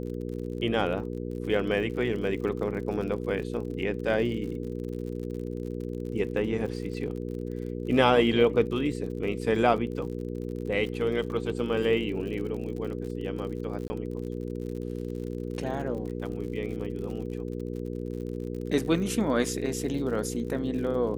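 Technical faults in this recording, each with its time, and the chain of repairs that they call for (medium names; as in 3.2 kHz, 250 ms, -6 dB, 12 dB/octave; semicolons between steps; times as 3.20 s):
crackle 59 per s -37 dBFS
hum 60 Hz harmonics 8 -34 dBFS
13.88–13.90 s: dropout 20 ms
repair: de-click; de-hum 60 Hz, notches 8; interpolate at 13.88 s, 20 ms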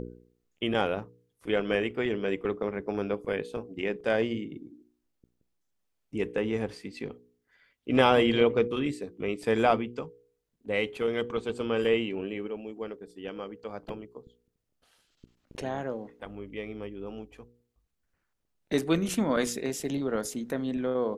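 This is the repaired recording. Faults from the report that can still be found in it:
nothing left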